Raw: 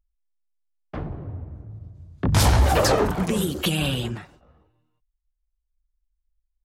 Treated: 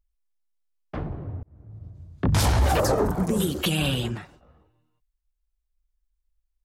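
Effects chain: 2.8–3.4 bell 2900 Hz -14 dB 1.5 oct; limiter -12.5 dBFS, peak gain reduction 5 dB; 1.43–1.89 fade in

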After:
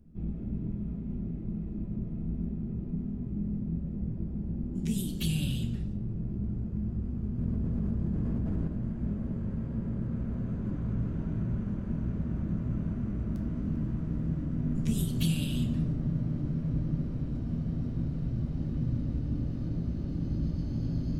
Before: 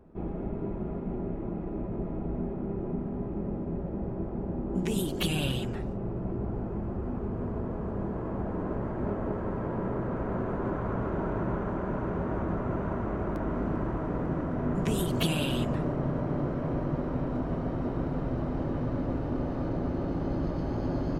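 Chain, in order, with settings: EQ curve 210 Hz 0 dB, 360 Hz -14 dB, 900 Hz -22 dB, 4700 Hz -2 dB; reverb RT60 0.70 s, pre-delay 3 ms, DRR 5 dB; 7.38–8.68 fast leveller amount 100%

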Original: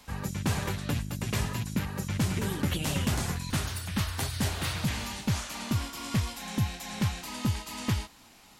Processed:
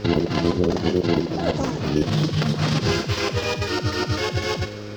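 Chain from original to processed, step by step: tilt shelf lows +6.5 dB, about 890 Hz; buzz 60 Hz, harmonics 5, -47 dBFS; negative-ratio compressor -31 dBFS, ratio -1; formant shift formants +5 st; resonant high shelf 4100 Hz -13 dB, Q 3; thinning echo 83 ms, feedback 72%, high-pass 420 Hz, level -11.5 dB; speed mistake 45 rpm record played at 78 rpm; gain +8 dB

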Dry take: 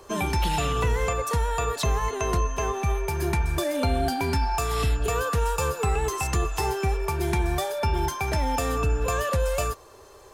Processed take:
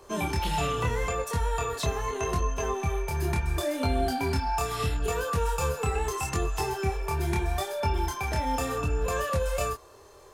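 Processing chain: chorus 0.77 Hz, depth 4.9 ms

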